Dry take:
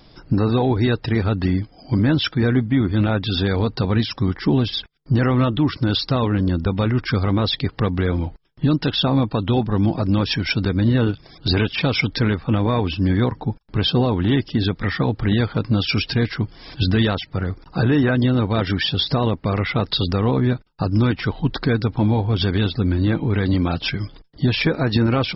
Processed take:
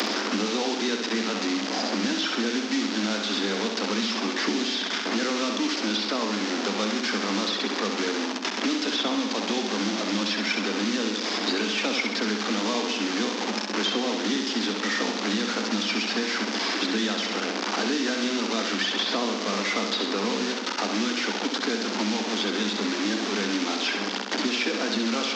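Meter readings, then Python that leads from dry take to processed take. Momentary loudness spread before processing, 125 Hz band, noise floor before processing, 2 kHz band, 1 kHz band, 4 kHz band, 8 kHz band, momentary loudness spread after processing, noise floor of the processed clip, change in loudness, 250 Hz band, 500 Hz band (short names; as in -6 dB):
5 LU, under -20 dB, -49 dBFS, 0.0 dB, -1.5 dB, 0.0 dB, n/a, 2 LU, -31 dBFS, -5.5 dB, -6.5 dB, -5.0 dB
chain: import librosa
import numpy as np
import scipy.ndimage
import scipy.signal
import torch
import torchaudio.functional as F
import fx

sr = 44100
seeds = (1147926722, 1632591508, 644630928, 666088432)

y = fx.delta_mod(x, sr, bps=32000, step_db=-18.0)
y = scipy.signal.sosfilt(scipy.signal.cheby1(10, 1.0, 200.0, 'highpass', fs=sr, output='sos'), y)
y = fx.high_shelf(y, sr, hz=3900.0, db=8.5)
y = fx.room_flutter(y, sr, wall_m=11.3, rt60_s=0.7)
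y = fx.band_squash(y, sr, depth_pct=100)
y = y * librosa.db_to_amplitude(-8.0)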